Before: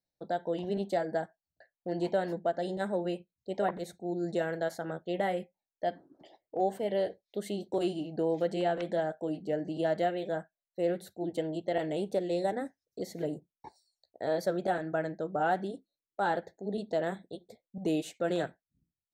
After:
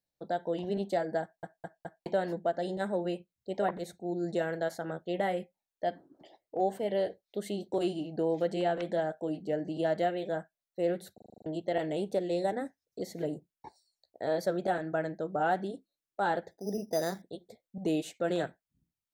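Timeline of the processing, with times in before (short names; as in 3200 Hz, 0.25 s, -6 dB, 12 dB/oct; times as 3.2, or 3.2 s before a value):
1.22 stutter in place 0.21 s, 4 plays
11.14 stutter in place 0.04 s, 8 plays
16.51–17.22 careless resampling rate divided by 8×, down filtered, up hold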